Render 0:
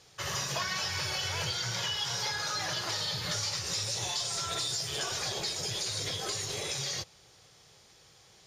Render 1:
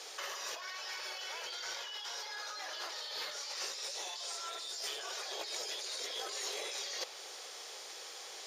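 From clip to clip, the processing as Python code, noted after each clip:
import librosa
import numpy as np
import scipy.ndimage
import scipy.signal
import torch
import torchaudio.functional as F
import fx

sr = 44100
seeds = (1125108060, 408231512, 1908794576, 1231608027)

y = scipy.signal.sosfilt(scipy.signal.butter(4, 400.0, 'highpass', fs=sr, output='sos'), x)
y = fx.dynamic_eq(y, sr, hz=8200.0, q=0.84, threshold_db=-50.0, ratio=4.0, max_db=-4)
y = fx.over_compress(y, sr, threshold_db=-45.0, ratio=-1.0)
y = y * 10.0 ** (3.0 / 20.0)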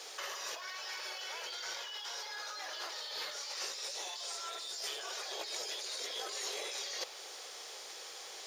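y = fx.quant_dither(x, sr, seeds[0], bits=12, dither='triangular')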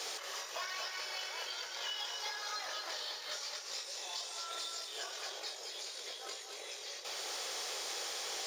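y = fx.over_compress(x, sr, threshold_db=-45.0, ratio=-0.5)
y = fx.doubler(y, sr, ms=23.0, db=-11.0)
y = y + 10.0 ** (-6.5 / 20.0) * np.pad(y, (int(234 * sr / 1000.0), 0))[:len(y)]
y = y * 10.0 ** (2.5 / 20.0)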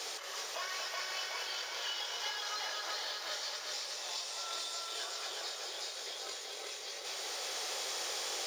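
y = fx.echo_crushed(x, sr, ms=374, feedback_pct=55, bits=11, wet_db=-3.0)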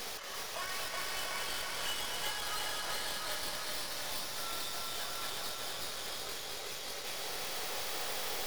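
y = fx.tracing_dist(x, sr, depth_ms=0.15)
y = y + 10.0 ** (-5.0 / 20.0) * np.pad(y, (int(688 * sr / 1000.0), 0))[:len(y)]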